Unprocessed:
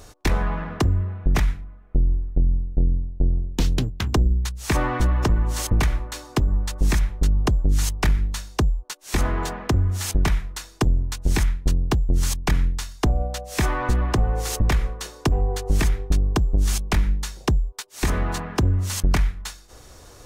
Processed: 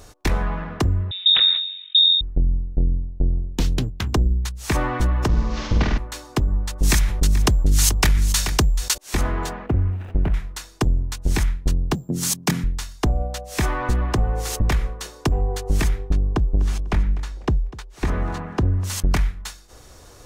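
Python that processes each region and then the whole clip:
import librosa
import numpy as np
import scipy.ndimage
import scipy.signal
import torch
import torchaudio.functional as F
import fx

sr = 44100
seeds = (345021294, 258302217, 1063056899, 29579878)

y = fx.chain(x, sr, fx.freq_invert(carrier_hz=3700),
    fx.sustainer(db_per_s=70.0), at=(1.11, 2.21))
y = fx.chain(y, sr, fx.cvsd(bps=32000),
    fx.room_flutter(wall_m=8.6, rt60_s=0.99), at=(5.28, 5.98))
y = fx.chain(y, sr, fx.high_shelf(hz=2600.0, db=10.0),
    fx.echo_single(ms=432, db=-15.5),
    fx.env_flatten(amount_pct=50), at=(6.83, 8.98))
y = fx.chain(y, sr, fx.median_filter(points=41),
    fx.high_shelf_res(hz=3700.0, db=-12.5, q=1.5), at=(9.66, 10.34))
y = fx.chain(y, sr, fx.highpass(hz=170.0, slope=24),
    fx.bass_treble(bass_db=12, treble_db=8), at=(11.94, 12.64))
y = fx.chain(y, sr, fx.lowpass(hz=1800.0, slope=6),
    fx.echo_feedback(ms=248, feedback_pct=30, wet_db=-18.0), at=(16.1, 18.84))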